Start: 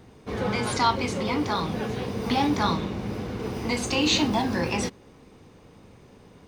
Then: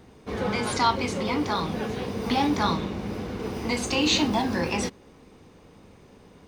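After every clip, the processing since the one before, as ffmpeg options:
ffmpeg -i in.wav -af "equalizer=frequency=120:width_type=o:width=0.34:gain=-5.5" out.wav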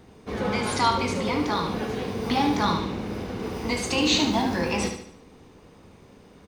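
ffmpeg -i in.wav -af "aecho=1:1:73|146|219|292|365:0.447|0.197|0.0865|0.0381|0.0167" out.wav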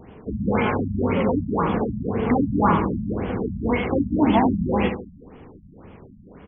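ffmpeg -i in.wav -af "afftfilt=real='re*lt(b*sr/1024,230*pow(3500/230,0.5+0.5*sin(2*PI*1.9*pts/sr)))':imag='im*lt(b*sr/1024,230*pow(3500/230,0.5+0.5*sin(2*PI*1.9*pts/sr)))':win_size=1024:overlap=0.75,volume=6.5dB" out.wav

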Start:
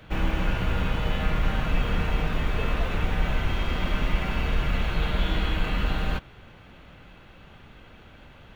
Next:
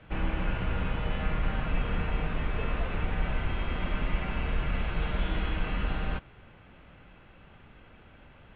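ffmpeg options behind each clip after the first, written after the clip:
ffmpeg -i in.wav -af "lowpass=frequency=3100:width=0.5412,lowpass=frequency=3100:width=1.3066,volume=-4.5dB" out.wav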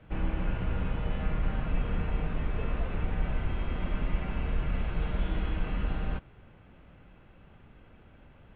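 ffmpeg -i in.wav -af "tiltshelf=frequency=790:gain=3.5,volume=-3.5dB" out.wav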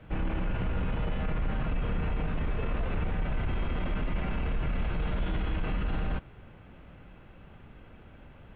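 ffmpeg -i in.wav -af "alimiter=level_in=3dB:limit=-24dB:level=0:latency=1:release=12,volume=-3dB,volume=4dB" out.wav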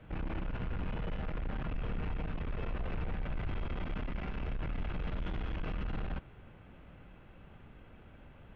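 ffmpeg -i in.wav -af "aeval=exprs='(tanh(28.2*val(0)+0.35)-tanh(0.35))/28.2':channel_layout=same,volume=-2.5dB" out.wav

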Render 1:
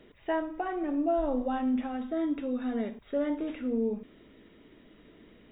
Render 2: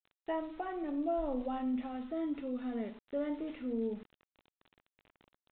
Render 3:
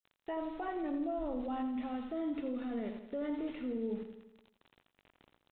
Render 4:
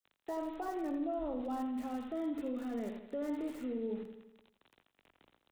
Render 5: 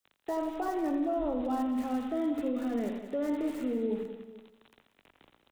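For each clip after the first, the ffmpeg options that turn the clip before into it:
ffmpeg -i in.wav -af "bandreject=frequency=1600:width=12,aresample=8000,aeval=exprs='val(0)*gte(abs(val(0)),0.00422)':channel_layout=same,aresample=44100,volume=-6dB" out.wav
ffmpeg -i in.wav -filter_complex "[0:a]alimiter=level_in=8.5dB:limit=-24dB:level=0:latency=1:release=20,volume=-8.5dB,asplit=2[link_01][link_02];[link_02]aecho=0:1:84|168|252|336|420|504|588:0.316|0.18|0.103|0.0586|0.0334|0.019|0.0108[link_03];[link_01][link_03]amix=inputs=2:normalize=0,volume=1.5dB" out.wav
ffmpeg -i in.wav -filter_complex "[0:a]acrossover=split=190|390|1800[link_01][link_02][link_03][link_04];[link_01]flanger=delay=15.5:depth=7.7:speed=1.3[link_05];[link_04]aeval=exprs='(mod(562*val(0)+1,2)-1)/562':channel_layout=same[link_06];[link_05][link_02][link_03][link_06]amix=inputs=4:normalize=0" out.wav
ffmpeg -i in.wav -af "aecho=1:1:188|443:0.251|0.126,volume=6dB" out.wav

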